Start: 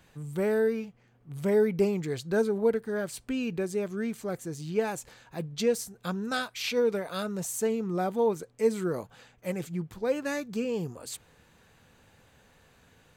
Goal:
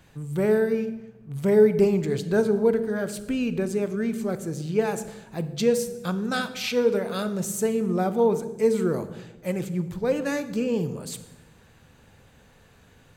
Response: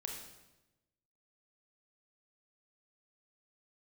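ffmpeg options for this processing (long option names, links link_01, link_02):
-filter_complex "[0:a]asplit=2[link_01][link_02];[1:a]atrim=start_sample=2205,lowshelf=frequency=470:gain=9.5[link_03];[link_02][link_03]afir=irnorm=-1:irlink=0,volume=-5dB[link_04];[link_01][link_04]amix=inputs=2:normalize=0"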